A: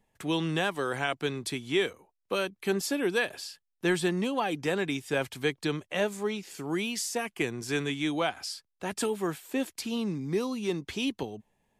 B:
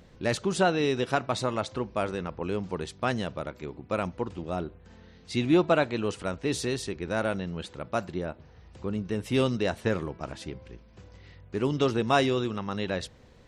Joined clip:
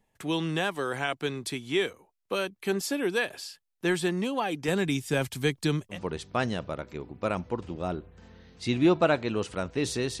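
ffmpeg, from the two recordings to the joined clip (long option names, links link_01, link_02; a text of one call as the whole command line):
ffmpeg -i cue0.wav -i cue1.wav -filter_complex "[0:a]asettb=1/sr,asplit=3[link_01][link_02][link_03];[link_01]atrim=end=4.684[link_04];[link_02]atrim=start=4.68:end=5.99,asetpts=PTS-STARTPTS,afade=type=in:duration=0.004:curve=qsin,afade=type=out:start_time=1.306:duration=0.004:curve=qsin,bass=frequency=250:gain=9,treble=frequency=4000:gain=6[link_05];[link_03]atrim=start=5.986[link_06];[link_04][link_05]acrossfade=duration=0.004:curve1=hsin:curve2=qsin[link_07];[link_07][link_06]acrossfade=duration=0.004:curve1=qsin:curve2=hsin,apad=whole_dur=10.2,atrim=end=10.2,atrim=end=5.99,asetpts=PTS-STARTPTS[link_08];[1:a]atrim=start=2.57:end=6.88,asetpts=PTS-STARTPTS[link_09];[link_08][link_09]acrossfade=duration=0.1:curve1=tri:curve2=tri" out.wav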